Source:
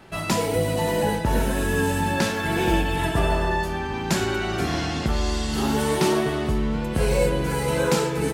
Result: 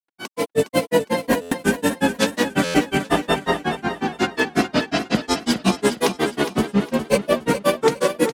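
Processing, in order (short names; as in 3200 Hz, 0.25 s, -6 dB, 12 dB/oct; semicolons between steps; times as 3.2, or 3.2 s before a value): Chebyshev high-pass 220 Hz, order 2; comb 4 ms, depth 41%; limiter -16 dBFS, peak gain reduction 9 dB; AGC gain up to 12 dB; grains 0.1 s, grains 5.5/s, pitch spread up and down by 3 st; on a send: feedback echo 0.411 s, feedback 26%, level -10 dB; on the sum: stuck buffer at 1.41/2.64, samples 512, times 8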